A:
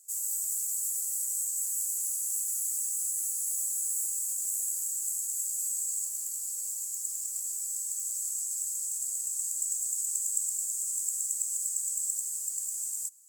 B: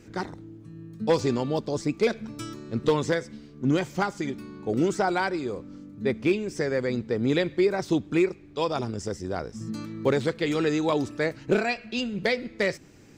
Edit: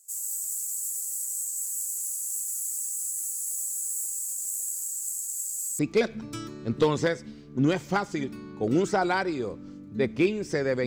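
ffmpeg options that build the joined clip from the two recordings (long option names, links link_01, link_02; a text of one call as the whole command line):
ffmpeg -i cue0.wav -i cue1.wav -filter_complex "[0:a]apad=whole_dur=10.86,atrim=end=10.86,atrim=end=5.792[link_01];[1:a]atrim=start=1.848:end=6.92[link_02];[link_01][link_02]acrossfade=duration=0.004:curve1=hsin:curve2=hsin" out.wav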